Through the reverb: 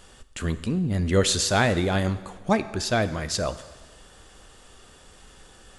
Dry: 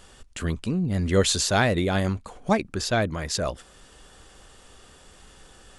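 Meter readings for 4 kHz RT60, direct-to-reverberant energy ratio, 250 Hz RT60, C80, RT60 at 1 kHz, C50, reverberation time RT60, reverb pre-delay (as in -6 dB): 1.3 s, 12.0 dB, 1.4 s, 15.5 dB, 1.4 s, 14.0 dB, 1.4 s, 5 ms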